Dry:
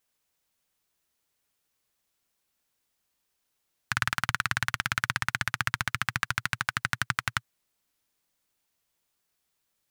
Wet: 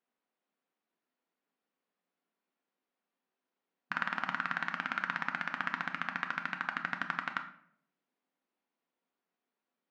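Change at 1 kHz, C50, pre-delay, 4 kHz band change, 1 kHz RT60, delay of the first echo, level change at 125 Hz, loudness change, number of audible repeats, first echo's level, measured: -3.5 dB, 10.5 dB, 3 ms, -12.5 dB, 0.60 s, none, -16.0 dB, -6.0 dB, none, none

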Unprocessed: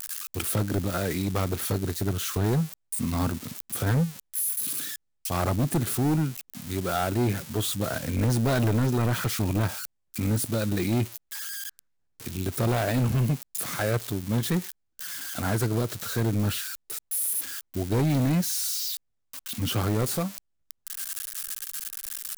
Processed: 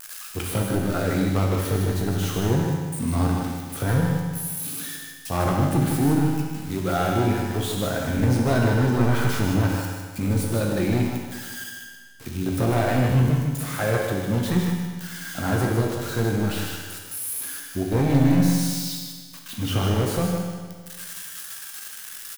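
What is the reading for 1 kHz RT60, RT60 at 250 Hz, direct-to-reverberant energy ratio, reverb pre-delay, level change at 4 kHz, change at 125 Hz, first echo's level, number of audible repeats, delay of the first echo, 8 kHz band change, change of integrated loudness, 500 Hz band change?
1.6 s, 1.6 s, -1.5 dB, 11 ms, +1.0 dB, +4.0 dB, -5.5 dB, 1, 0.154 s, -1.5 dB, +3.5 dB, +4.5 dB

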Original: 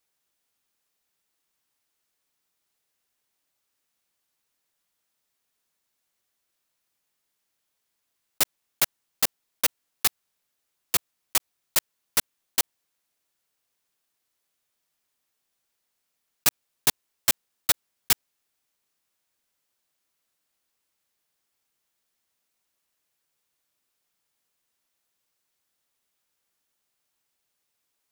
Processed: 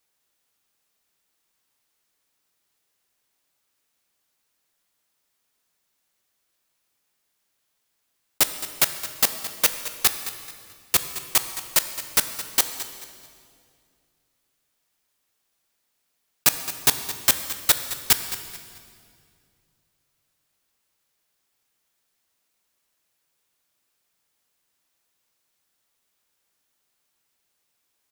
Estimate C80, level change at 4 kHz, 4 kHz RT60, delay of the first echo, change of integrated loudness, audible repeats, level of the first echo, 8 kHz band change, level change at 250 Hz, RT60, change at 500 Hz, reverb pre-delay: 9.5 dB, +4.0 dB, 1.9 s, 0.217 s, +3.5 dB, 3, -14.0 dB, +4.0 dB, +4.0 dB, 2.2 s, +4.0 dB, 14 ms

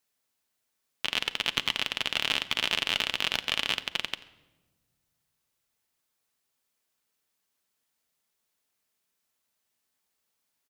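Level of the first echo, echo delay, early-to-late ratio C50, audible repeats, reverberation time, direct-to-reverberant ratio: -20.5 dB, 87 ms, 15.5 dB, 1, 1.2 s, 10.5 dB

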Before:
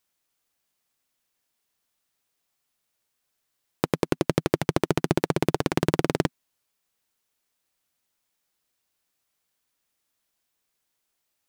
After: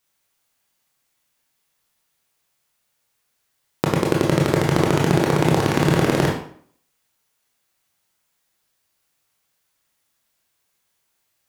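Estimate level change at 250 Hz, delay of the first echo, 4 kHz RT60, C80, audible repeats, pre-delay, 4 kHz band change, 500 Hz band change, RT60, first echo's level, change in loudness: +6.5 dB, none, 0.45 s, 8.0 dB, none, 20 ms, +6.5 dB, +6.0 dB, 0.55 s, none, +7.0 dB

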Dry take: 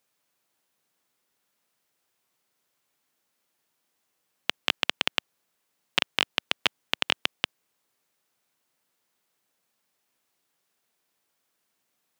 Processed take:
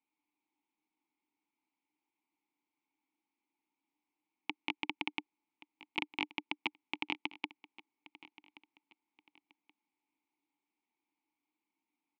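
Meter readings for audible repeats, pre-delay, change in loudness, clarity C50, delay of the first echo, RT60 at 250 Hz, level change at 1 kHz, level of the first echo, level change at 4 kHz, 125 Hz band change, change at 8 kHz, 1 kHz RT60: 2, none, -12.0 dB, none, 1.127 s, none, -8.0 dB, -19.5 dB, -16.0 dB, -15.0 dB, under -25 dB, none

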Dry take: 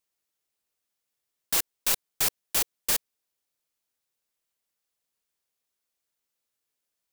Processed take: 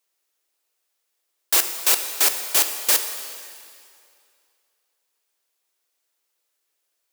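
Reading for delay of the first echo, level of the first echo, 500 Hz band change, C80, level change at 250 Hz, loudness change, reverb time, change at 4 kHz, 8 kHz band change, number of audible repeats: none, none, +7.5 dB, 9.0 dB, +3.0 dB, +7.5 dB, 2.4 s, +8.0 dB, +8.0 dB, none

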